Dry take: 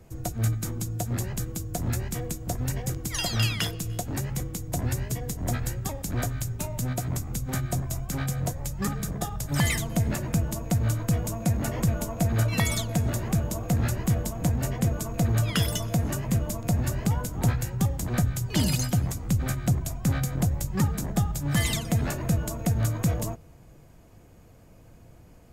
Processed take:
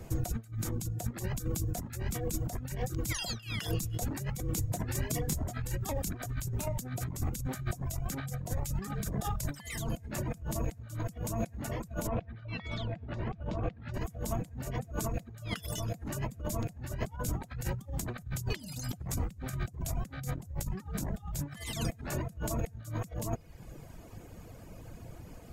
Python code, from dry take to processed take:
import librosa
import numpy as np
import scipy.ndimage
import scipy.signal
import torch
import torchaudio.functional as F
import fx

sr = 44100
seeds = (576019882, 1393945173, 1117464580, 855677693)

y = fx.detune_double(x, sr, cents=11, at=(4.61, 5.77), fade=0.02)
y = fx.lowpass(y, sr, hz=3700.0, slope=24, at=(12.07, 13.94))
y = fx.over_compress(y, sr, threshold_db=-35.0, ratio=-1.0)
y = fx.dereverb_blind(y, sr, rt60_s=0.8)